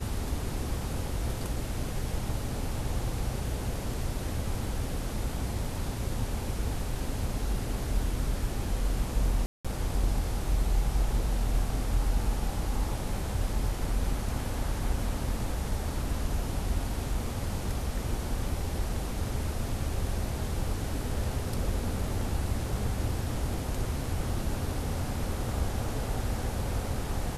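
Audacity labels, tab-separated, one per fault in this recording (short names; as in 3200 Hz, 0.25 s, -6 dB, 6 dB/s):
9.460000	9.650000	gap 0.186 s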